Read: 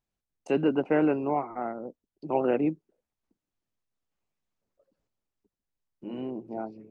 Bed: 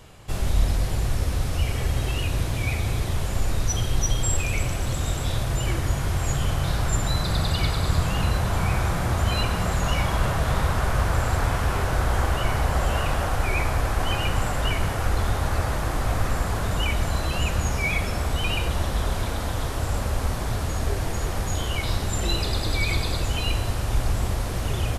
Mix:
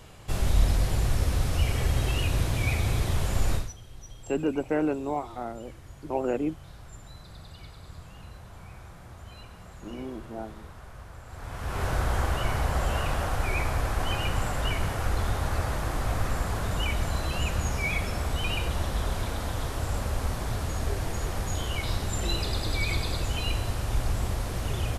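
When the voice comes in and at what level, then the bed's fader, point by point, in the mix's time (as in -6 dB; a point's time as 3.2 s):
3.80 s, -2.5 dB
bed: 3.55 s -1 dB
3.76 s -22.5 dB
11.25 s -22.5 dB
11.85 s -4 dB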